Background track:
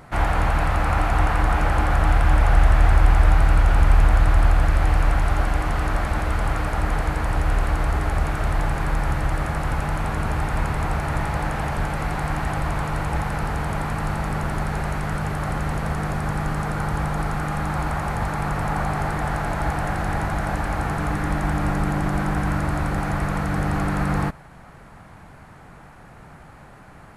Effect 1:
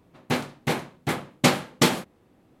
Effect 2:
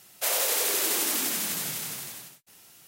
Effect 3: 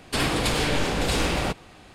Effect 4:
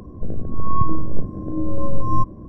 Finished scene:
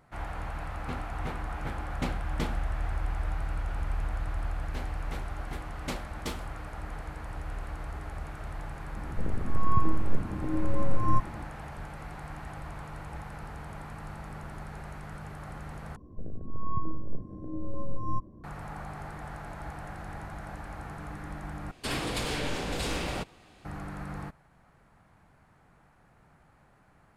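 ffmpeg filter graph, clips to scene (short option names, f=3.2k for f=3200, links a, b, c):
-filter_complex "[1:a]asplit=2[a][b];[4:a]asplit=2[c][d];[0:a]volume=-16.5dB[e];[a]bass=f=250:g=7,treble=f=4k:g=-7[f];[3:a]acontrast=84[g];[e]asplit=3[h][i][j];[h]atrim=end=15.964[k];[d]atrim=end=2.48,asetpts=PTS-STARTPTS,volume=-12.5dB[l];[i]atrim=start=18.436:end=21.714[m];[g]atrim=end=1.94,asetpts=PTS-STARTPTS,volume=-15dB[n];[j]atrim=start=23.646[o];[f]atrim=end=2.6,asetpts=PTS-STARTPTS,volume=-16.5dB,afade=t=in:d=0.004:c=hsin,afade=t=out:st=2.596:d=0.004:c=hsin,adelay=580[p];[b]atrim=end=2.6,asetpts=PTS-STARTPTS,volume=-17.5dB,afade=t=in:d=0.004:c=hsin,afade=t=out:st=2.596:d=0.004:c=hsin,adelay=4440[q];[c]atrim=end=2.48,asetpts=PTS-STARTPTS,volume=-6dB,afade=t=in:d=0.004:c=hsin,afade=t=out:st=2.476:d=0.004:c=hsin,adelay=8960[r];[k][l]acrossfade=d=0.004:c1=hsin:c2=hsin[s];[s][m]acrossfade=d=0.004:c1=hsin:c2=hsin[t];[t][n]acrossfade=d=0.004:c1=hsin:c2=hsin[u];[u][o]acrossfade=d=0.004:c1=hsin:c2=hsin[v];[v][p][q][r]amix=inputs=4:normalize=0"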